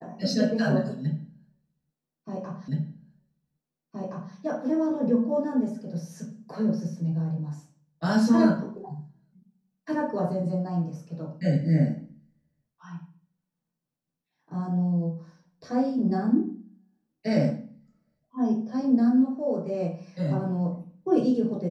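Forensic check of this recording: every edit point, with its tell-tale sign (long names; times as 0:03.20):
0:02.68: the same again, the last 1.67 s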